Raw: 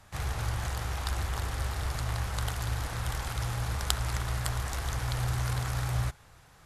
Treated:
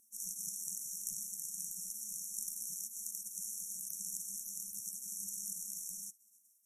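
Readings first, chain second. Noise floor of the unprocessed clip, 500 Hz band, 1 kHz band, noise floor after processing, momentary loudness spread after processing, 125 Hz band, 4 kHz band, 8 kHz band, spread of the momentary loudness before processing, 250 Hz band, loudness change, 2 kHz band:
−57 dBFS, below −40 dB, below −40 dB, −69 dBFS, 2 LU, below −35 dB, −13.5 dB, +3.5 dB, 3 LU, −19.0 dB, −7.0 dB, below −40 dB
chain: linear-phase brick-wall band-stop 190–5,500 Hz
on a send: feedback echo with a high-pass in the loop 491 ms, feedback 40%, high-pass 170 Hz, level −22 dB
on the sum: speech leveller 2 s
gate on every frequency bin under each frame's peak −30 dB weak
level +6 dB

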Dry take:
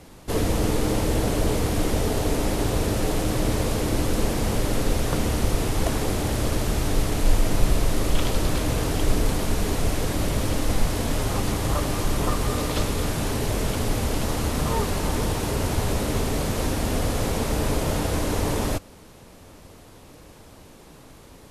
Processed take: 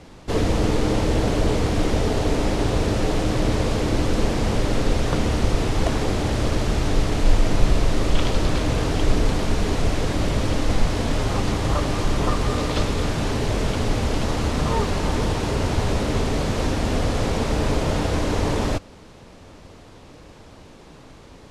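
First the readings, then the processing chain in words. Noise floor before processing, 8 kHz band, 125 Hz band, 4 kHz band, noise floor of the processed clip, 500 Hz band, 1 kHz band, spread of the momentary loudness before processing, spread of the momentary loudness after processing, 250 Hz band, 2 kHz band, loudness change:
−47 dBFS, −3.5 dB, +2.5 dB, +2.0 dB, −45 dBFS, +2.5 dB, +2.5 dB, 2 LU, 2 LU, +2.5 dB, +2.5 dB, +2.0 dB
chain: low-pass filter 6,000 Hz 12 dB per octave
level +2.5 dB

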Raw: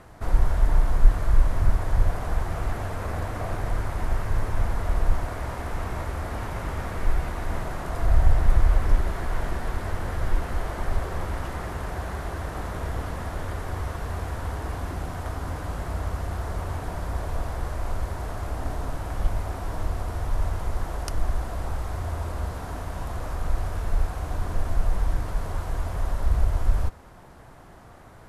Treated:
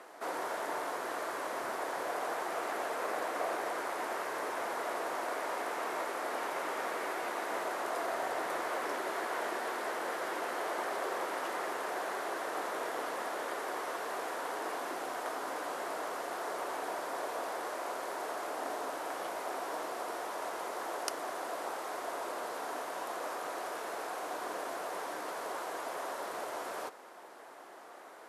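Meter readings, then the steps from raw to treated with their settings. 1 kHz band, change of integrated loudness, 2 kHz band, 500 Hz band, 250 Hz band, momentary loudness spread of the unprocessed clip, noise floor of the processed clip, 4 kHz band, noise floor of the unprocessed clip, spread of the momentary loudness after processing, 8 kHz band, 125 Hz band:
0.0 dB, −7.5 dB, 0.0 dB, −0.5 dB, −8.5 dB, 8 LU, −51 dBFS, 0.0 dB, −47 dBFS, 4 LU, can't be measured, below −35 dB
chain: high-pass filter 350 Hz 24 dB per octave

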